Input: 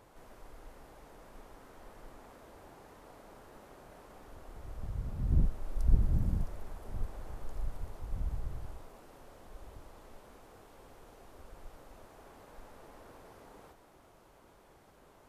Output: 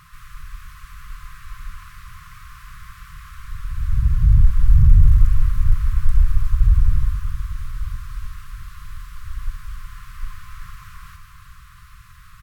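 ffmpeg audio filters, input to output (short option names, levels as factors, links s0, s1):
-filter_complex "[0:a]aeval=exprs='0.251*sin(PI/2*3.55*val(0)/0.251)':c=same,afftfilt=real='re*(1-between(b*sr/4096,140,820))':imag='im*(1-between(b*sr/4096,140,820))':win_size=4096:overlap=0.75,asetrate=54243,aresample=44100,asubboost=boost=3:cutoff=110,asplit=2[s0][s1];[s1]aecho=0:1:366|732|1098|1464|1830|2196|2562:0.316|0.183|0.106|0.0617|0.0358|0.0208|0.012[s2];[s0][s2]amix=inputs=2:normalize=0,volume=0.891"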